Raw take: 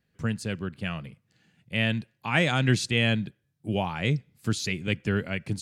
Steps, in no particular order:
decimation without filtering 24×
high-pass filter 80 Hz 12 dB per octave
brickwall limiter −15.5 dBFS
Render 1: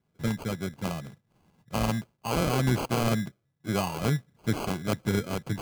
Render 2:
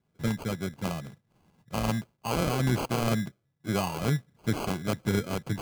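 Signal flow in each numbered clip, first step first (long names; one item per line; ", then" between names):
high-pass filter, then decimation without filtering, then brickwall limiter
high-pass filter, then brickwall limiter, then decimation without filtering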